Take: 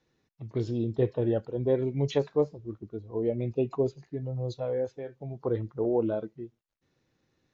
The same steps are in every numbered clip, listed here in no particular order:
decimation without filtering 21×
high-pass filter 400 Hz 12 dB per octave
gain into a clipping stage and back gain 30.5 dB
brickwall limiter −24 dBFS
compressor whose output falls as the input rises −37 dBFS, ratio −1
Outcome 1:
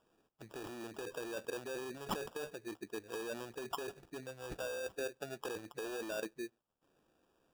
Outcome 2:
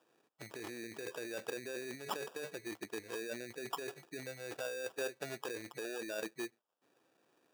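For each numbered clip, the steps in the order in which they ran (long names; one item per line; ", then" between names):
brickwall limiter, then gain into a clipping stage and back, then compressor whose output falls as the input rises, then high-pass filter, then decimation without filtering
decimation without filtering, then brickwall limiter, then compressor whose output falls as the input rises, then gain into a clipping stage and back, then high-pass filter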